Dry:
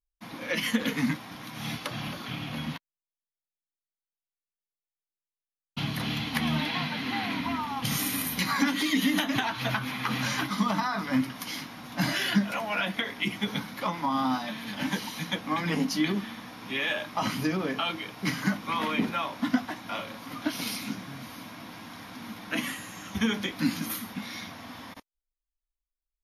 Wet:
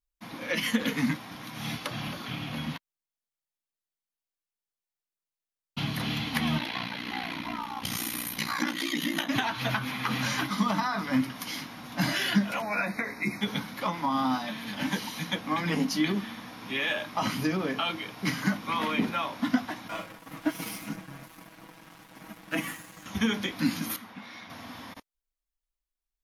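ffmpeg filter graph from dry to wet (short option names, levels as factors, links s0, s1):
-filter_complex "[0:a]asettb=1/sr,asplit=3[s0][s1][s2];[s0]atrim=end=6.584[s3];[s1]atrim=start=6.58:end=9.29,asetpts=PTS-STARTPTS,afade=t=in:d=0.004:c=qsin,afade=t=out:st=2.706:d=0.004:c=qsin,aeval=exprs='val(0)*sin(2*PI*30*n/s)':c=same,lowshelf=f=250:g=-5.5[s4];[s2]atrim=start=9.286[s5];[s3][s4]acrossfade=d=0.004:c1=hsin:c2=qsin[s6];[s6][s5]acrossfade=d=0.004:c1=qsin:c2=hsin,asettb=1/sr,asplit=3[s7][s8][s9];[s7]atrim=end=12.624[s10];[s8]atrim=start=12.62:end=13.41,asetpts=PTS-STARTPTS,afade=t=in:d=0.004:c=qsin,afade=t=out:st=0.786:d=0.004:c=qsin,asuperstop=centerf=3100:order=20:qfactor=2.7,asplit=2[s11][s12];[s12]adelay=14,volume=0.266[s13];[s11][s13]amix=inputs=2:normalize=0,atrim=end_sample=34839[s14];[s9]atrim=start=13.406[s15];[s10][s14]acrossfade=d=0.004:c1=hsin:c2=qsin[s16];[s16][s15]acrossfade=d=0.004:c1=qsin:c2=hsin,asettb=1/sr,asplit=3[s17][s18][s19];[s17]atrim=end=19.884[s20];[s18]atrim=start=19.88:end=23.06,asetpts=PTS-STARTPTS,afade=t=in:d=0.004:c=qsin,afade=t=out:st=3.176:d=0.004:c=qsin,equalizer=f=4100:t=o:w=0.86:g=-10.5,aeval=exprs='sgn(val(0))*max(abs(val(0))-0.00631,0)':c=same,aecho=1:1:6.2:0.74,atrim=end_sample=140238[s21];[s19]atrim=start=23.056[s22];[s20][s21]acrossfade=d=0.004:c1=hsin:c2=qsin[s23];[s23][s22]acrossfade=d=0.004:c1=qsin:c2=hsin,asettb=1/sr,asplit=3[s24][s25][s26];[s24]atrim=end=23.964[s27];[s25]atrim=start=23.96:end=24.5,asetpts=PTS-STARTPTS,afade=t=in:d=0.004:c=qsin,afade=t=out:st=0.536:d=0.004:c=qsin,lowpass=f=1600:p=1,lowshelf=f=380:g=-11.5[s28];[s26]atrim=start=24.496[s29];[s27][s28]acrossfade=d=0.004:c1=hsin:c2=qsin[s30];[s30][s29]acrossfade=d=0.004:c1=qsin:c2=hsin"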